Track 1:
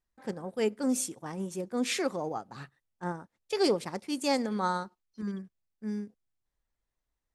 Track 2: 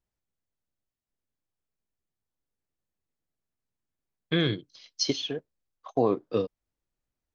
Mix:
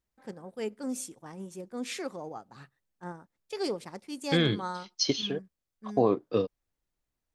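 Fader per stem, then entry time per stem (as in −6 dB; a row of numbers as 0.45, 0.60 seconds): −6.0, 0.0 decibels; 0.00, 0.00 seconds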